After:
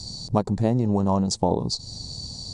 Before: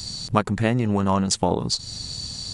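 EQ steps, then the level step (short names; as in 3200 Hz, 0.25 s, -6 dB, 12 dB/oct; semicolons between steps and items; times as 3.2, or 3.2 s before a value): air absorption 66 m; band shelf 2000 Hz -15.5 dB; 0.0 dB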